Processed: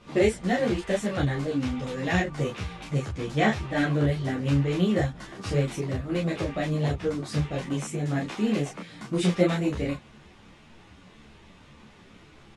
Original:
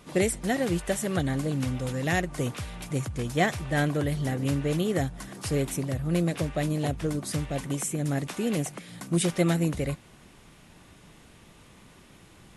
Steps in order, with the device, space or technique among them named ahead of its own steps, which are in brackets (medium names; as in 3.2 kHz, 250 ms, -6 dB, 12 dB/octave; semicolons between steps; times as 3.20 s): doubling 28 ms -2.5 dB; string-machine ensemble chorus (three-phase chorus; low-pass 5 kHz 12 dB/octave); trim +3 dB